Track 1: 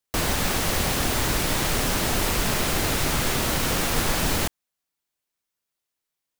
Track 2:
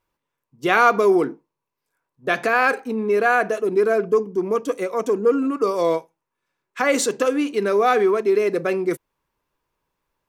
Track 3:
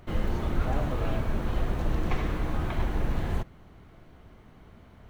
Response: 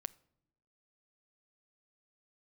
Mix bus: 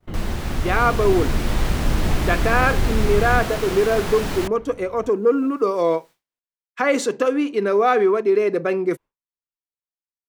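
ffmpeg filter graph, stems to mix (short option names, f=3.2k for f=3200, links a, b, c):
-filter_complex "[0:a]acompressor=mode=upward:threshold=-32dB:ratio=2.5,volume=-6.5dB[a];[1:a]volume=-5dB[b];[2:a]acrossover=split=360|3000[c][d][e];[d]acompressor=threshold=-45dB:ratio=6[f];[c][f][e]amix=inputs=3:normalize=0,volume=2.5dB[g];[a][b][g]amix=inputs=3:normalize=0,agate=range=-33dB:threshold=-40dB:ratio=3:detection=peak,highshelf=f=4.9k:g=-10.5,dynaudnorm=f=370:g=5:m=6dB"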